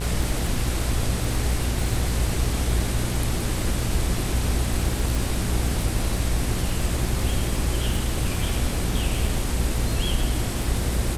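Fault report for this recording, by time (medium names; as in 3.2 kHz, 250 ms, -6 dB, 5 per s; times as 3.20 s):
buzz 60 Hz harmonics 39 -28 dBFS
crackle 30 per s -27 dBFS
5.15 s: pop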